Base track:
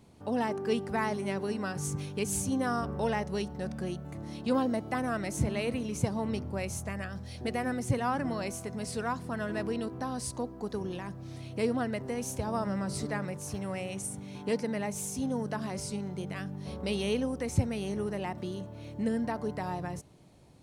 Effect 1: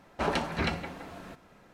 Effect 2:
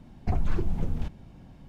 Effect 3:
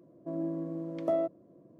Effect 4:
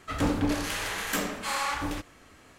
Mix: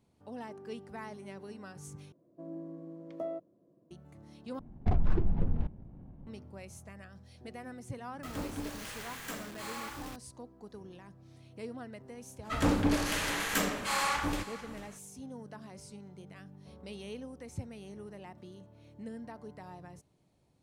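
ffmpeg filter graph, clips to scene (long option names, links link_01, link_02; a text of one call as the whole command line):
ffmpeg -i bed.wav -i cue0.wav -i cue1.wav -i cue2.wav -i cue3.wav -filter_complex "[4:a]asplit=2[link_01][link_02];[0:a]volume=-13dB[link_03];[2:a]adynamicsmooth=sensitivity=6.5:basefreq=610[link_04];[link_01]acrusher=bits=5:mix=0:aa=0.000001[link_05];[link_02]aecho=1:1:444:0.158[link_06];[link_03]asplit=3[link_07][link_08][link_09];[link_07]atrim=end=2.124[link_10];[3:a]atrim=end=1.79,asetpts=PTS-STARTPTS,volume=-9dB[link_11];[link_08]atrim=start=3.906:end=4.594[link_12];[link_04]atrim=end=1.68,asetpts=PTS-STARTPTS,volume=-1dB[link_13];[link_09]atrim=start=6.266[link_14];[link_05]atrim=end=2.58,asetpts=PTS-STARTPTS,volume=-12.5dB,afade=type=in:duration=0.004:curve=hsin,afade=type=out:start_time=2.576:duration=0.004:curve=hsin,adelay=8150[link_15];[link_06]atrim=end=2.58,asetpts=PTS-STARTPTS,volume=-1dB,afade=type=in:duration=0.05,afade=type=out:start_time=2.53:duration=0.05,adelay=12420[link_16];[link_10][link_11]acrossfade=duration=0.004:curve1=hsin:curve2=hsin[link_17];[link_17][link_12]acrossfade=duration=0.004:curve1=hsin:curve2=hsin[link_18];[link_18][link_13]acrossfade=duration=0.004:curve1=hsin:curve2=hsin[link_19];[link_19][link_14]acrossfade=duration=0.004:curve1=hsin:curve2=hsin[link_20];[link_20][link_15][link_16]amix=inputs=3:normalize=0" out.wav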